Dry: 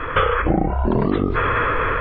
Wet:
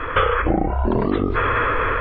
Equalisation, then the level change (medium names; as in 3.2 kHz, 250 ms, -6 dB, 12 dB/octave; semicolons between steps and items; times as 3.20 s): peaking EQ 160 Hz -8 dB 0.43 oct; 0.0 dB